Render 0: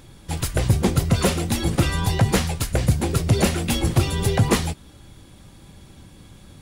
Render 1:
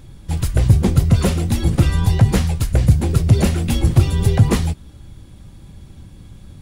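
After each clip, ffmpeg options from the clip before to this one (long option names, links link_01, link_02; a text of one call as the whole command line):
ffmpeg -i in.wav -af "lowshelf=frequency=200:gain=12,volume=-2.5dB" out.wav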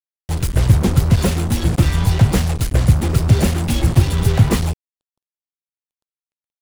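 ffmpeg -i in.wav -af "acrusher=bits=3:mix=0:aa=0.5" out.wav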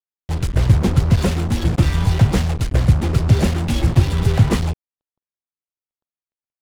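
ffmpeg -i in.wav -af "adynamicsmooth=sensitivity=6.5:basefreq=2200,volume=-1dB" out.wav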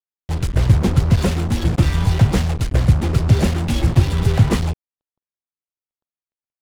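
ffmpeg -i in.wav -af anull out.wav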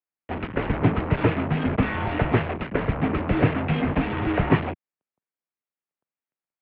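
ffmpeg -i in.wav -af "highpass=frequency=210:width_type=q:width=0.5412,highpass=frequency=210:width_type=q:width=1.307,lowpass=frequency=2700:width_type=q:width=0.5176,lowpass=frequency=2700:width_type=q:width=0.7071,lowpass=frequency=2700:width_type=q:width=1.932,afreqshift=-79,volume=2.5dB" out.wav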